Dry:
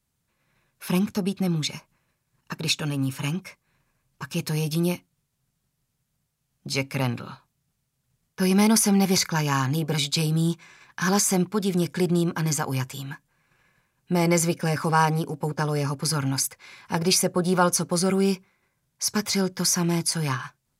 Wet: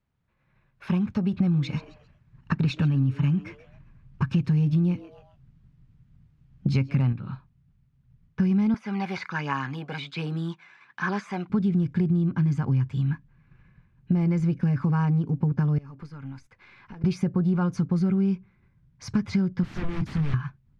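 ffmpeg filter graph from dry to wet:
ffmpeg -i in.wav -filter_complex "[0:a]asettb=1/sr,asplit=3[link_01][link_02][link_03];[link_01]atrim=end=1.334[link_04];[link_02]atrim=start=1.33:end=7.13,asetpts=PTS-STARTPTS,afade=type=in:duration=0.004:curve=qsin,afade=type=out:start_time=5.796:duration=0.004:curve=qsin,acontrast=56,asplit=4[link_05][link_06][link_07][link_08];[link_06]adelay=133,afreqshift=150,volume=-20dB[link_09];[link_07]adelay=266,afreqshift=300,volume=-29.6dB[link_10];[link_08]adelay=399,afreqshift=450,volume=-39.3dB[link_11];[link_05][link_09][link_10][link_11]amix=inputs=4:normalize=0,atrim=end_sample=255780[link_12];[link_03]atrim=start=7.126[link_13];[link_04][link_12]acrossfade=duration=0.004:curve1=hsin:curve2=qsin[link_14];[link_14][link_13]acrossfade=duration=0.004:curve1=qsin:curve2=hsin,asettb=1/sr,asplit=3[link_15][link_16][link_17];[link_15]atrim=end=8.744[link_18];[link_16]atrim=start=8.74:end=11.5,asetpts=PTS-STARTPTS,afade=type=in:duration=0.004:curve=qsin,afade=type=out:start_time=2.756:duration=0.004:curve=qsin,aphaser=in_gain=1:out_gain=1:delay=1.5:decay=0.36:speed=1.3:type=triangular,acrossover=split=3500[link_19][link_20];[link_20]acompressor=threshold=-36dB:ratio=4:attack=1:release=60[link_21];[link_19][link_21]amix=inputs=2:normalize=0,highpass=610[link_22];[link_17]atrim=start=11.496[link_23];[link_18][link_22]acrossfade=duration=0.004:curve1=hsin:curve2=qsin[link_24];[link_24][link_23]acrossfade=duration=0.004:curve1=qsin:curve2=hsin,asettb=1/sr,asplit=3[link_25][link_26][link_27];[link_25]atrim=end=15.784[link_28];[link_26]atrim=start=15.78:end=17.04,asetpts=PTS-STARTPTS,afade=type=in:duration=0.004:curve=qsin,afade=type=out:start_time=1.256:duration=0.004:curve=qsin,bass=frequency=250:gain=-13,treble=frequency=4000:gain=-2,acompressor=threshold=-45dB:ratio=4:attack=3.2:release=140:knee=1:detection=peak,aeval=exprs='(tanh(28.2*val(0)+0.2)-tanh(0.2))/28.2':channel_layout=same[link_29];[link_27]atrim=start=17.036[link_30];[link_28][link_29]acrossfade=duration=0.004:curve1=hsin:curve2=qsin[link_31];[link_31][link_30]acrossfade=duration=0.004:curve1=qsin:curve2=hsin,asettb=1/sr,asplit=3[link_32][link_33][link_34];[link_32]atrim=end=19.634[link_35];[link_33]atrim=start=19.63:end=20.34,asetpts=PTS-STARTPTS,afade=type=in:duration=0.004:curve=qsin,afade=type=out:start_time=0.706:duration=0.004:curve=qsin,highshelf=frequency=11000:gain=-4,asplit=2[link_36][link_37];[link_37]adelay=28,volume=-8.5dB[link_38];[link_36][link_38]amix=inputs=2:normalize=0,atrim=end_sample=31311,aeval=exprs='0.0376*(abs(mod(val(0)/0.0376+3,4)-2)-1)':channel_layout=same[link_39];[link_34]atrim=start=20.336[link_40];[link_35][link_39]acrossfade=duration=0.004:curve1=hsin:curve2=qsin[link_41];[link_41][link_40]acrossfade=duration=0.004:curve1=qsin:curve2=hsin,lowpass=2300,asubboost=boost=8.5:cutoff=190,acompressor=threshold=-21dB:ratio=6" out.wav

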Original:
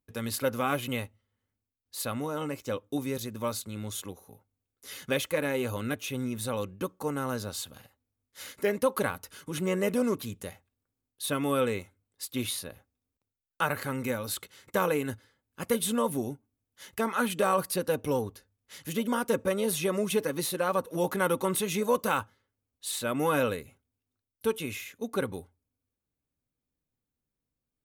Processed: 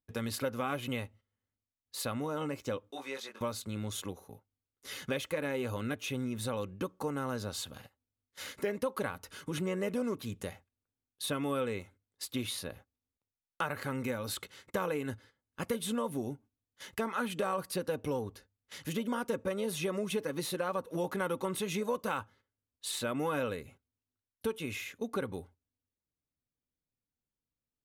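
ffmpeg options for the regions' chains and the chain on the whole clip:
ffmpeg -i in.wav -filter_complex "[0:a]asettb=1/sr,asplit=3[link_01][link_02][link_03];[link_01]atrim=end=2.914[link_04];[link_02]atrim=start=2.91:end=3.41,asetpts=PTS-STARTPTS,afade=type=in:duration=0.004:curve=qsin,afade=type=out:start_time=0.496:duration=0.004:curve=qsin,highpass=850,aemphasis=mode=reproduction:type=50fm,asplit=2[link_05][link_06];[link_06]adelay=22,volume=-3dB[link_07];[link_05][link_07]amix=inputs=2:normalize=0,atrim=end_sample=22050[link_08];[link_03]atrim=start=3.406[link_09];[link_04][link_08]acrossfade=duration=0.004:curve1=hsin:curve2=qsin[link_10];[link_10][link_09]acrossfade=duration=0.004:curve1=qsin:curve2=hsin,agate=range=-9dB:threshold=-54dB:ratio=16:detection=peak,highshelf=frequency=8400:gain=-9.5,acompressor=threshold=-36dB:ratio=2.5,volume=2dB" out.wav

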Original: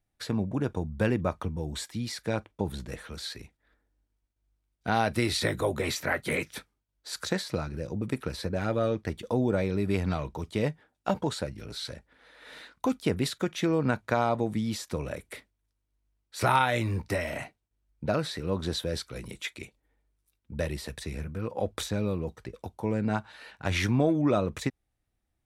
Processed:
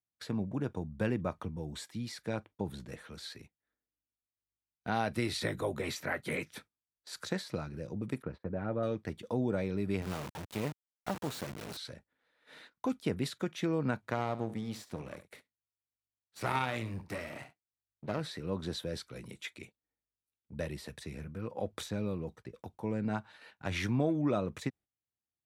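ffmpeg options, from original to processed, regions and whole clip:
ffmpeg -i in.wav -filter_complex "[0:a]asettb=1/sr,asplit=3[link_01][link_02][link_03];[link_01]atrim=end=8.224[link_04];[link_02]atrim=start=8.22:end=8.83,asetpts=PTS-STARTPTS,afade=type=in:duration=0.004:curve=qsin,afade=type=out:start_time=0.606:duration=0.004:curve=qsin,lowpass=1500,agate=range=-25dB:threshold=-46dB:ratio=16:release=100:detection=peak[link_05];[link_03]atrim=start=8.826[link_06];[link_04][link_05]acrossfade=duration=0.004:curve1=hsin:curve2=qsin[link_07];[link_07][link_06]acrossfade=duration=0.004:curve1=qsin:curve2=hsin,asettb=1/sr,asplit=3[link_08][link_09][link_10];[link_08]atrim=end=10.024[link_11];[link_09]atrim=start=10.02:end=11.77,asetpts=PTS-STARTPTS,afade=type=in:duration=0.004:curve=qsin,afade=type=out:start_time=1.746:duration=0.004:curve=qsin,aeval=exprs='val(0)+0.5*0.0224*sgn(val(0))':channel_layout=same,acrusher=bits=3:dc=4:mix=0:aa=0.000001[link_12];[link_10]atrim=start=11.766[link_13];[link_11][link_12]acrossfade=duration=0.004:curve1=hsin:curve2=qsin[link_14];[link_14][link_13]acrossfade=duration=0.004:curve1=qsin:curve2=hsin,asettb=1/sr,asplit=3[link_15][link_16][link_17];[link_15]atrim=end=14.104[link_18];[link_16]atrim=start=14.1:end=18.21,asetpts=PTS-STARTPTS,afade=type=in:duration=0.004:curve=qsin,afade=type=out:start_time=4.106:duration=0.004:curve=qsin,aeval=exprs='if(lt(val(0),0),0.251*val(0),val(0))':channel_layout=same,aecho=1:1:70:0.2,atrim=end_sample=181251[link_19];[link_17]atrim=start=18.206[link_20];[link_18][link_19]acrossfade=duration=0.004:curve1=hsin:curve2=qsin[link_21];[link_21][link_20]acrossfade=duration=0.004:curve1=qsin:curve2=hsin,highpass=110,agate=range=-13dB:threshold=-48dB:ratio=16:detection=peak,bass=frequency=250:gain=3,treble=frequency=4000:gain=-2,volume=-6.5dB" out.wav

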